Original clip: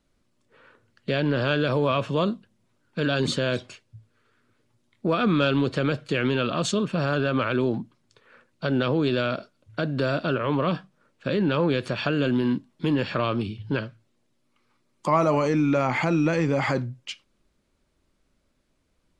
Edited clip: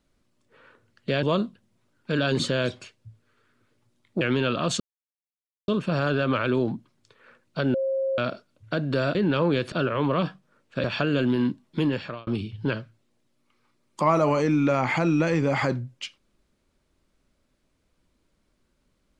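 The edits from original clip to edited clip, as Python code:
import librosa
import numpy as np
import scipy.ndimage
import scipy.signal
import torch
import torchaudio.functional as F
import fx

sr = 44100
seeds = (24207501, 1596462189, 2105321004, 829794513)

y = fx.edit(x, sr, fx.cut(start_s=1.23, length_s=0.88),
    fx.cut(start_s=5.09, length_s=1.06),
    fx.insert_silence(at_s=6.74, length_s=0.88),
    fx.bleep(start_s=8.8, length_s=0.44, hz=536.0, db=-22.5),
    fx.move(start_s=11.33, length_s=0.57, to_s=10.21),
    fx.fade_out_span(start_s=12.89, length_s=0.44), tone=tone)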